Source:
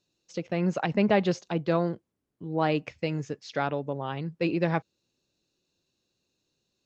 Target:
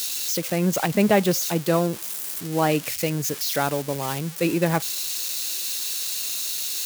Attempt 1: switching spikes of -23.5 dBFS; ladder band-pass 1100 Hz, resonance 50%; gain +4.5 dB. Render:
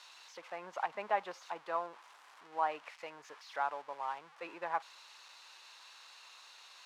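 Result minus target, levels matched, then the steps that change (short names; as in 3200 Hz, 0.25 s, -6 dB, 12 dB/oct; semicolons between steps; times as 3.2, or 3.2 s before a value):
1000 Hz band +8.5 dB
remove: ladder band-pass 1100 Hz, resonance 50%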